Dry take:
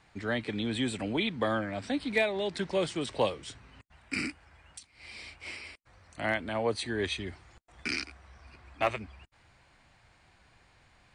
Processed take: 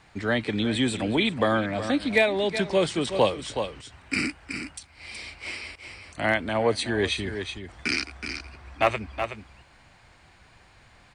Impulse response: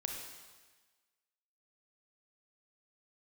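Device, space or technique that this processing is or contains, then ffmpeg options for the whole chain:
ducked delay: -filter_complex "[0:a]asplit=3[link_01][link_02][link_03];[link_02]adelay=372,volume=-7.5dB[link_04];[link_03]apad=whole_len=508061[link_05];[link_04][link_05]sidechaincompress=threshold=-37dB:ratio=8:attack=37:release=203[link_06];[link_01][link_06]amix=inputs=2:normalize=0,volume=6.5dB"

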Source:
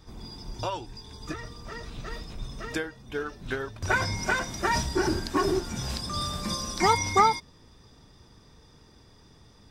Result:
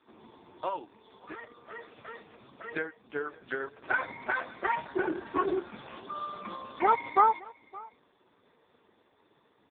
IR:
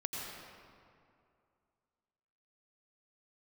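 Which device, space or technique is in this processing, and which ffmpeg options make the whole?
satellite phone: -filter_complex "[0:a]asplit=3[link_01][link_02][link_03];[link_01]afade=type=out:start_time=1.61:duration=0.02[link_04];[link_02]lowshelf=frequency=92:gain=2,afade=type=in:start_time=1.61:duration=0.02,afade=type=out:start_time=2.08:duration=0.02[link_05];[link_03]afade=type=in:start_time=2.08:duration=0.02[link_06];[link_04][link_05][link_06]amix=inputs=3:normalize=0,highpass=340,lowpass=3200,aecho=1:1:569:0.075" -ar 8000 -c:a libopencore_amrnb -b:a 4750

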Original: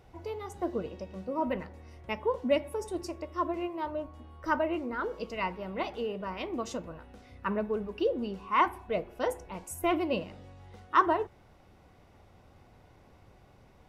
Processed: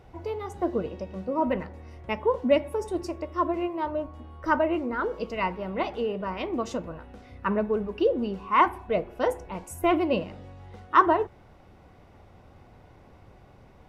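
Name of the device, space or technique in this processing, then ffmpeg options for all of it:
behind a face mask: -af "highshelf=frequency=3500:gain=-7,volume=5.5dB"

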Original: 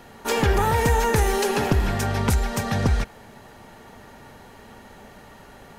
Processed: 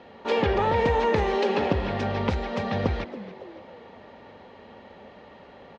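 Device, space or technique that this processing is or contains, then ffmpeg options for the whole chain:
frequency-shifting delay pedal into a guitar cabinet: -filter_complex "[0:a]asplit=5[link_01][link_02][link_03][link_04][link_05];[link_02]adelay=278,afreqshift=140,volume=-17dB[link_06];[link_03]adelay=556,afreqshift=280,volume=-24.3dB[link_07];[link_04]adelay=834,afreqshift=420,volume=-31.7dB[link_08];[link_05]adelay=1112,afreqshift=560,volume=-39dB[link_09];[link_01][link_06][link_07][link_08][link_09]amix=inputs=5:normalize=0,highpass=84,equalizer=frequency=130:width_type=q:width=4:gain=-10,equalizer=frequency=530:width_type=q:width=4:gain=7,equalizer=frequency=1500:width_type=q:width=4:gain=-6,lowpass=frequency=4000:width=0.5412,lowpass=frequency=4000:width=1.3066,volume=-2dB"

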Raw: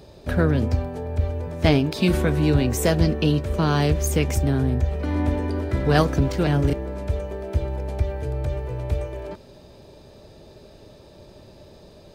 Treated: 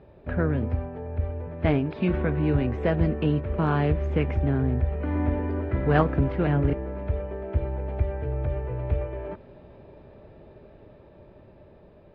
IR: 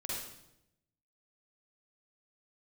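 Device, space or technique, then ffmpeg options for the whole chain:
action camera in a waterproof case: -af "lowpass=frequency=2400:width=0.5412,lowpass=frequency=2400:width=1.3066,dynaudnorm=framelen=670:gausssize=9:maxgain=7.5dB,volume=-5dB" -ar 44100 -c:a aac -b:a 48k

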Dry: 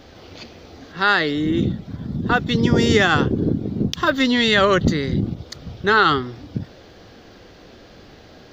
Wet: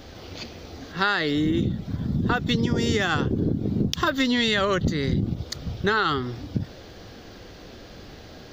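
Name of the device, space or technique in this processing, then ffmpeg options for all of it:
ASMR close-microphone chain: -af "lowshelf=frequency=130:gain=5,acompressor=threshold=-19dB:ratio=10,highshelf=frequency=6100:gain=7"

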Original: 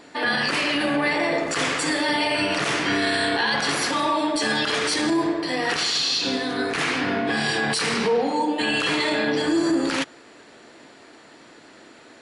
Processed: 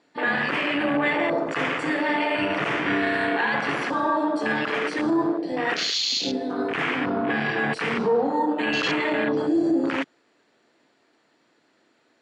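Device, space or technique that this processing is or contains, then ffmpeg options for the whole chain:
over-cleaned archive recording: -filter_complex "[0:a]asettb=1/sr,asplit=3[link_01][link_02][link_03];[link_01]atrim=end=7.104[link_04];[link_02]atrim=start=7.1:end=7.59,asetpts=PTS-STARTPTS,afade=type=in:duration=0.004:curve=qsin,afade=type=out:start_time=0.486:duration=0.004:curve=qsin,lowpass=frequency=5300:width=0.5412,lowpass=frequency=5300:width=1.3066[link_05];[link_03]atrim=start=7.586[link_06];[link_04][link_05]acrossfade=duration=0.004:curve1=hsin:curve2=qsin[link_07];[link_07][link_06]acrossfade=duration=0.004:curve1=qsin:curve2=hsin,highpass=100,lowpass=7700,afwtdn=0.0562"

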